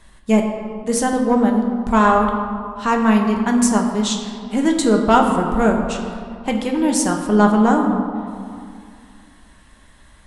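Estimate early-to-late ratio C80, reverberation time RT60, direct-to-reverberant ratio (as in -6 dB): 6.0 dB, 2.3 s, 1.5 dB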